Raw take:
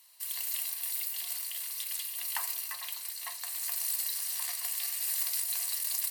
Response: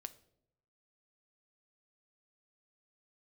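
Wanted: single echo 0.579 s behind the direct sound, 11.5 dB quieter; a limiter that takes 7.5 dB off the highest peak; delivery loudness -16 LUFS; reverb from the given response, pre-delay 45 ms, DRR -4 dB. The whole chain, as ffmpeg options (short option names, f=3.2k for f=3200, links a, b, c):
-filter_complex "[0:a]alimiter=limit=-22.5dB:level=0:latency=1,aecho=1:1:579:0.266,asplit=2[a][b];[1:a]atrim=start_sample=2205,adelay=45[c];[b][c]afir=irnorm=-1:irlink=0,volume=8.5dB[d];[a][d]amix=inputs=2:normalize=0,volume=11.5dB"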